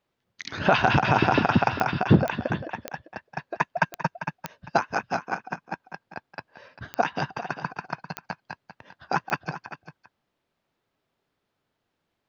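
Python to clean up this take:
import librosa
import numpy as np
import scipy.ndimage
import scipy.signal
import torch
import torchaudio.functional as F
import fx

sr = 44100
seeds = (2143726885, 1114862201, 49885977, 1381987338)

y = fx.fix_declick_ar(x, sr, threshold=10.0)
y = fx.fix_echo_inverse(y, sr, delay_ms=396, level_db=-13.0)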